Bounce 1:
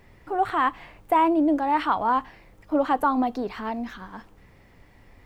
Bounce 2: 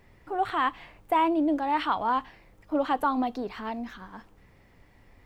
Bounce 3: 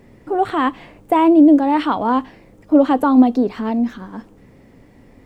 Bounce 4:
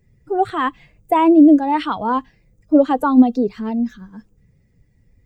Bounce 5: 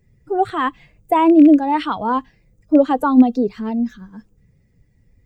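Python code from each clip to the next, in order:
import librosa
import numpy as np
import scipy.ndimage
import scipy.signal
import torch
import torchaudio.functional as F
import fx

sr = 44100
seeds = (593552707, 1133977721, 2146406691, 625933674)

y1 = fx.dynamic_eq(x, sr, hz=3400.0, q=1.2, threshold_db=-44.0, ratio=4.0, max_db=6)
y1 = y1 * librosa.db_to_amplitude(-4.0)
y2 = fx.graphic_eq(y1, sr, hz=(125, 250, 500, 8000), db=(5, 12, 7, 5))
y2 = y2 * librosa.db_to_amplitude(4.0)
y3 = fx.bin_expand(y2, sr, power=1.5)
y3 = y3 * librosa.db_to_amplitude(1.5)
y4 = fx.rattle_buzz(y3, sr, strikes_db=-18.0, level_db=-24.0)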